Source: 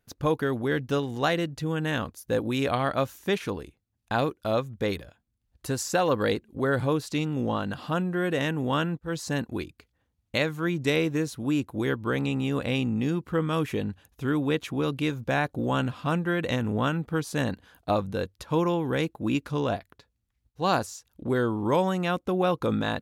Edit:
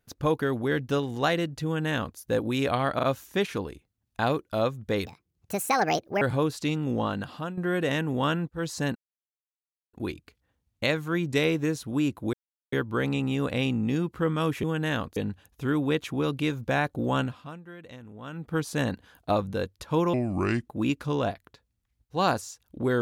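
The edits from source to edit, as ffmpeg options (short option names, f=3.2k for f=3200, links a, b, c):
-filter_complex "[0:a]asplit=14[a][b][c][d][e][f][g][h][i][j][k][l][m][n];[a]atrim=end=2.992[o];[b]atrim=start=2.948:end=2.992[p];[c]atrim=start=2.948:end=4.984[q];[d]atrim=start=4.98:end=6.71,asetpts=PTS-STARTPTS,asetrate=66150,aresample=44100[r];[e]atrim=start=6.706:end=8.07,asetpts=PTS-STARTPTS,afade=t=out:st=0.934:d=0.43:silence=0.266073[s];[f]atrim=start=8.07:end=9.45,asetpts=PTS-STARTPTS,afade=t=in:d=0.004:c=hsin:silence=0.266073,afade=t=out:st=1.376:d=0.004:c=hsin,apad=pad_dur=0.98[t];[g]atrim=start=9.45:end=11.85,asetpts=PTS-STARTPTS,afade=t=in:d=0.004:c=hsin,afade=t=out:st=2.396:d=0.004:c=hsin,apad=pad_dur=0.39[u];[h]atrim=start=11.85:end=13.762,asetpts=PTS-STARTPTS,afade=t=in:d=0.004:c=hsin[v];[i]atrim=start=1.648:end=2.182[w];[j]atrim=start=13.758:end=16.21,asetpts=PTS-STARTPTS,afade=t=out:st=2.042:d=0.41:c=qua:silence=0.125893[x];[k]atrim=start=16.21:end=16.75,asetpts=PTS-STARTPTS,volume=-18dB[y];[l]atrim=start=16.75:end=18.734,asetpts=PTS-STARTPTS,afade=t=in:d=0.41:c=qua:silence=0.125893[z];[m]atrim=start=18.73:end=19.12,asetpts=PTS-STARTPTS,asetrate=32193,aresample=44100,atrim=end_sample=23560,asetpts=PTS-STARTPTS[aa];[n]atrim=start=19.116[ab];[o][p]acrossfade=d=0.004:c1=hsin:c2=hsin[ac];[ac][q]acrossfade=d=0.004:c1=hsin:c2=hsin[ad];[ad][r]acrossfade=d=0.004:c1=hsin:c2=hsin[ae];[s][t][u][v]concat=n=4:v=0:a=1[af];[ae][af]acrossfade=d=0.004:c1=hsin:c2=hsin[ag];[ag][w]acrossfade=d=0.004:c1=hsin:c2=hsin[ah];[x][y][z]concat=n=3:v=0:a=1[ai];[ah][ai]acrossfade=d=0.004:c1=hsin:c2=hsin[aj];[aj][aa]acrossfade=d=0.004:c1=hsin:c2=hsin[ak];[ak][ab]acrossfade=d=0.004:c1=hsin:c2=hsin"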